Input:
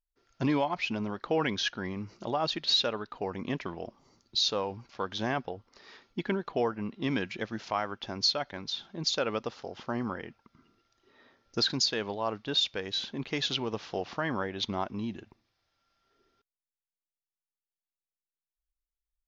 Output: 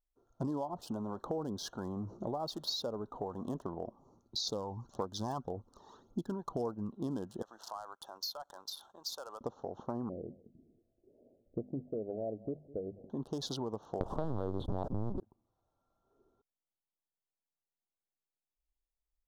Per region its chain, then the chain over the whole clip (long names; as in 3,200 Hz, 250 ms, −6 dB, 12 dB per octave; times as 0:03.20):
0:00.69–0:03.60: mu-law and A-law mismatch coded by mu + two-band tremolo in antiphase 1.3 Hz, depth 50%, crossover 660 Hz
0:04.47–0:06.92: phase shifter 1.8 Hz, delay 1.2 ms, feedback 56% + high-shelf EQ 4,600 Hz +11.5 dB
0:07.42–0:09.41: downward compressor 2.5 to 1, threshold −41 dBFS + high-pass filter 1,200 Hz + leveller curve on the samples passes 2
0:10.09–0:13.10: Butterworth low-pass 680 Hz 72 dB per octave + mains-hum notches 50/100/150/200/250 Hz + single-tap delay 204 ms −23 dB
0:14.00–0:15.20: tilt shelving filter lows +8.5 dB, about 1,300 Hz + leveller curve on the samples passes 5 + linear-prediction vocoder at 8 kHz pitch kept
whole clip: adaptive Wiener filter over 9 samples; Chebyshev band-stop filter 950–5,100 Hz, order 2; downward compressor 4 to 1, threshold −37 dBFS; level +2 dB